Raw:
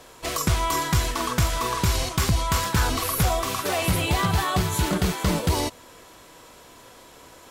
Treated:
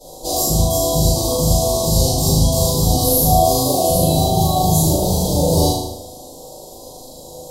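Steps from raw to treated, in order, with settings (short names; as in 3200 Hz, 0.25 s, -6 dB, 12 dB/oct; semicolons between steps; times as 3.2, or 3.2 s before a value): low shelf 68 Hz -9 dB; in parallel at -1 dB: negative-ratio compressor -28 dBFS; on the sum: elliptic band-stop 810–4100 Hz, stop band 70 dB; bell 13000 Hz +3.5 dB 1.8 oct; on a send: flutter echo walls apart 6.5 m, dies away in 0.79 s; on the sum: shoebox room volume 41 m³, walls mixed, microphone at 2.4 m; gain -10 dB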